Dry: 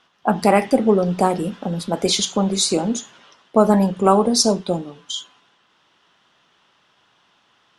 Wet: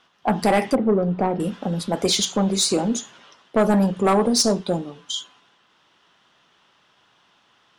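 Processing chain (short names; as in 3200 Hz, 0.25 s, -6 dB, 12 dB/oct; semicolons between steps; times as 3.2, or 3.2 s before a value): 0.75–1.4 tape spacing loss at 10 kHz 39 dB; soft clip -10.5 dBFS, distortion -12 dB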